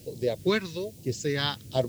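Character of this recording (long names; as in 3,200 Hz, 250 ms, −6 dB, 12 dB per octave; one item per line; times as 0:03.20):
a quantiser's noise floor 10 bits, dither triangular
phaser sweep stages 2, 1.2 Hz, lowest notch 590–1,400 Hz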